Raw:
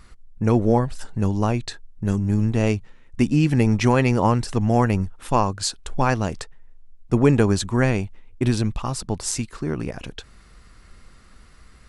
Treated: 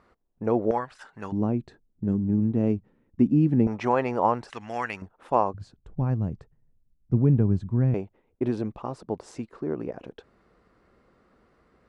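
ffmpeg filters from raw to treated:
-af "asetnsamples=n=441:p=0,asendcmd='0.71 bandpass f 1400;1.32 bandpass f 250;3.67 bandpass f 760;4.5 bandpass f 2100;5.02 bandpass f 620;5.54 bandpass f 130;7.94 bandpass f 470',bandpass=f=580:t=q:w=1.1:csg=0"

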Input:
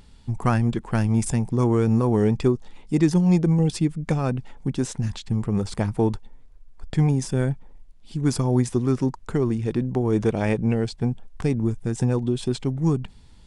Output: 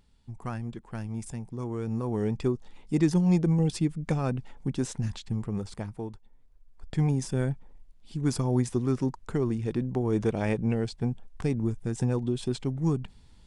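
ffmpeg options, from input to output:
-af "volume=7.5dB,afade=t=in:st=1.69:d=1.27:silence=0.334965,afade=t=out:st=5.05:d=1.06:silence=0.237137,afade=t=in:st=6.11:d=1.01:silence=0.251189"

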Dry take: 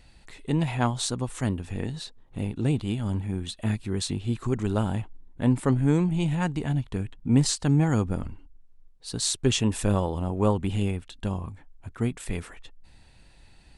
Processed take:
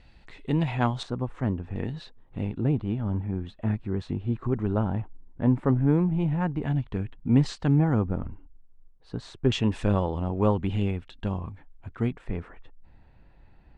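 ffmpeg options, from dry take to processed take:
-af "asetnsamples=n=441:p=0,asendcmd='1.03 lowpass f 1500;1.76 lowpass f 2700;2.58 lowpass f 1500;6.62 lowpass f 2700;7.79 lowpass f 1500;9.52 lowpass f 3200;12.12 lowpass f 1500',lowpass=3.7k"

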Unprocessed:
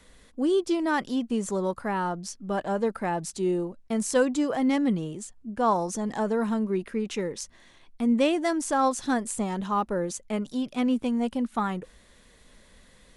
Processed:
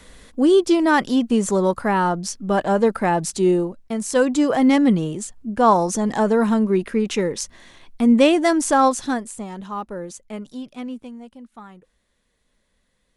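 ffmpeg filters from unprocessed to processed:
-af "volume=16.5dB,afade=t=out:st=3.49:d=0.51:silence=0.398107,afade=t=in:st=4:d=0.5:silence=0.421697,afade=t=out:st=8.75:d=0.56:silence=0.266073,afade=t=out:st=10.52:d=0.74:silence=0.298538"

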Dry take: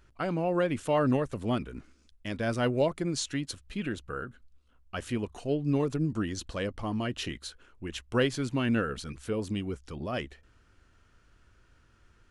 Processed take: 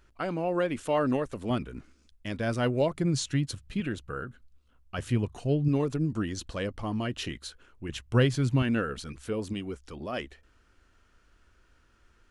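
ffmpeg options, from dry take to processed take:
-af "asetnsamples=n=441:p=0,asendcmd='1.5 equalizer g 2;2.94 equalizer g 12.5;3.8 equalizer g 3.5;4.98 equalizer g 10.5;5.68 equalizer g 1.5;7.89 equalizer g 10.5;8.62 equalizer g -1.5;9.53 equalizer g -7.5',equalizer=f=120:t=o:w=1.1:g=-5.5"

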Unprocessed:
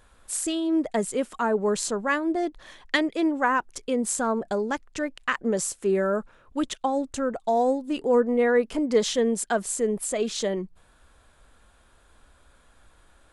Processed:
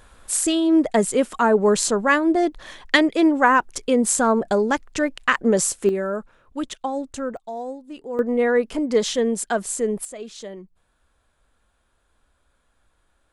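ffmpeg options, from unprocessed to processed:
-af "asetnsamples=n=441:p=0,asendcmd='5.89 volume volume -1dB;7.37 volume volume -9dB;8.19 volume volume 2dB;10.05 volume volume -9dB',volume=7dB"

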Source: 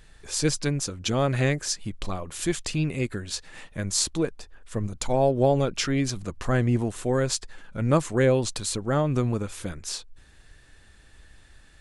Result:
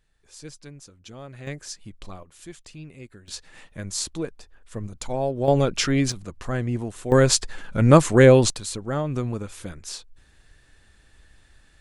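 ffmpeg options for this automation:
-af "asetnsamples=n=441:p=0,asendcmd='1.47 volume volume -8.5dB;2.23 volume volume -15dB;3.28 volume volume -4dB;5.48 volume volume 3.5dB;6.12 volume volume -3.5dB;7.12 volume volume 8dB;8.5 volume volume -2.5dB',volume=-17dB"

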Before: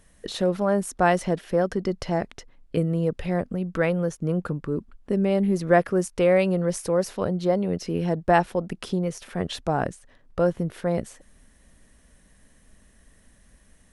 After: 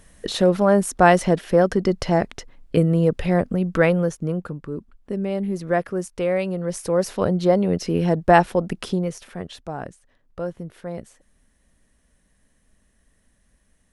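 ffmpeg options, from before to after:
-af "volume=14dB,afade=t=out:st=3.83:d=0.64:silence=0.354813,afade=t=in:st=6.6:d=0.64:silence=0.398107,afade=t=out:st=8.71:d=0.78:silence=0.251189"

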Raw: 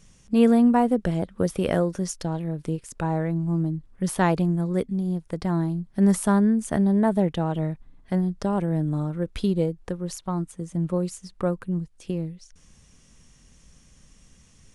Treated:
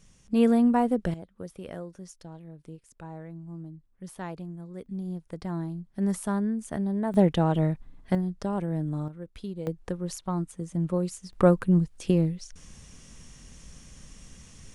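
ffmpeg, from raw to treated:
-af "asetnsamples=n=441:p=0,asendcmd='1.14 volume volume -16dB;4.86 volume volume -8dB;7.14 volume volume 2dB;8.15 volume volume -5dB;9.08 volume volume -13dB;9.67 volume volume -2dB;11.33 volume volume 6dB',volume=-3.5dB"

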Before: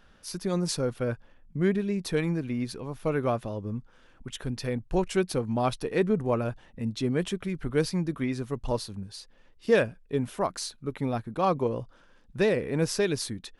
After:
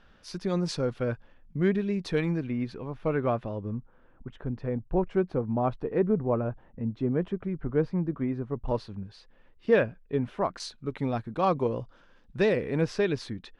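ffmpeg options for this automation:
-af "asetnsamples=n=441:p=0,asendcmd='2.47 lowpass f 2700;3.75 lowpass f 1200;8.68 lowpass f 2600;10.6 lowpass f 5300;12.81 lowpass f 3200',lowpass=4.7k"

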